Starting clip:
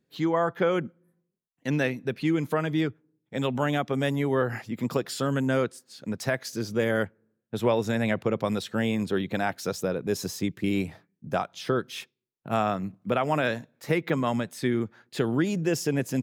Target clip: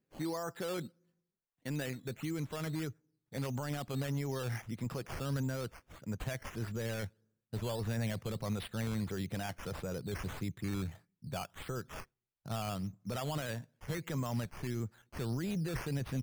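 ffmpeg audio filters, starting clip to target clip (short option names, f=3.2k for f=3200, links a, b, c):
-af "acrusher=samples=9:mix=1:aa=0.000001:lfo=1:lforange=5.4:lforate=1.6,alimiter=limit=-21.5dB:level=0:latency=1:release=10,asubboost=boost=4.5:cutoff=120,volume=-8dB"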